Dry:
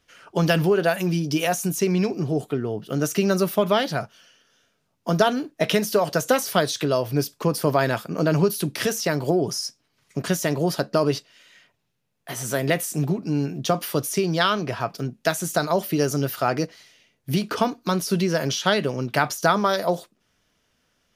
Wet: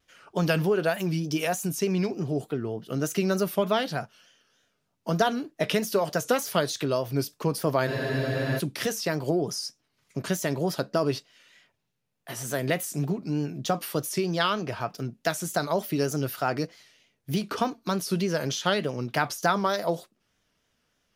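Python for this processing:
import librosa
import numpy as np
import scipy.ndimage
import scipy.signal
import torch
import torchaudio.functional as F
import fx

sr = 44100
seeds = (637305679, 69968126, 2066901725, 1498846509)

y = fx.vibrato(x, sr, rate_hz=3.3, depth_cents=80.0)
y = fx.spec_freeze(y, sr, seeds[0], at_s=7.9, hold_s=0.68)
y = y * 10.0 ** (-4.5 / 20.0)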